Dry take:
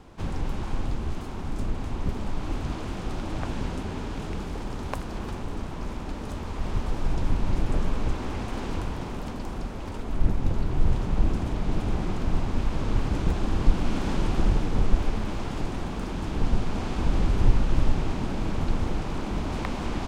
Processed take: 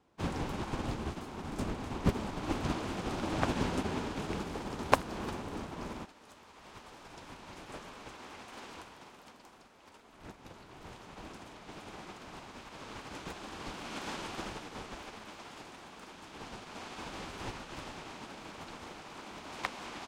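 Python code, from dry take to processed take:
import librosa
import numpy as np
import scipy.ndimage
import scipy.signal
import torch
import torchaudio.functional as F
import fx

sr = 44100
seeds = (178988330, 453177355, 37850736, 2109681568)

y = fx.highpass(x, sr, hz=fx.steps((0.0, 210.0), (6.05, 1100.0)), slope=6)
y = fx.upward_expand(y, sr, threshold_db=-48.0, expansion=2.5)
y = y * librosa.db_to_amplitude(10.0)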